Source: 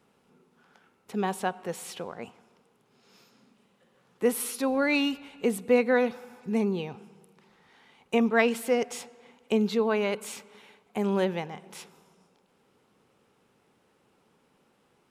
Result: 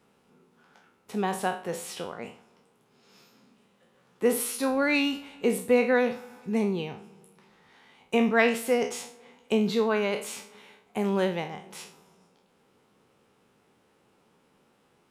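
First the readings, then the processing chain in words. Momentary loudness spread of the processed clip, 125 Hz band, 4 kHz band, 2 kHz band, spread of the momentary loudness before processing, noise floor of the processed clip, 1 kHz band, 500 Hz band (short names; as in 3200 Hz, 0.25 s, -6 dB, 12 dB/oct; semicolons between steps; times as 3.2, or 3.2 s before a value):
16 LU, +0.5 dB, +1.5 dB, +2.0 dB, 16 LU, -66 dBFS, +1.0 dB, +0.5 dB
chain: spectral trails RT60 0.39 s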